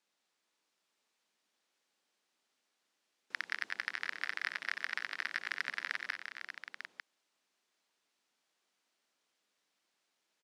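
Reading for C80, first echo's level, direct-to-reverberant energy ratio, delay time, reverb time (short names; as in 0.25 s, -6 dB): none, -13.0 dB, none, 91 ms, none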